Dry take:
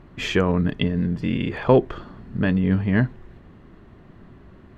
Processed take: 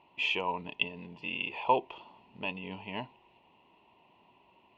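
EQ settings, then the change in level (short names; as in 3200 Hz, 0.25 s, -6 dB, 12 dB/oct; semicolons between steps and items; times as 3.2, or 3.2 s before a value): double band-pass 1600 Hz, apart 1.5 oct; bell 1200 Hz -12.5 dB 0.32 oct; +5.0 dB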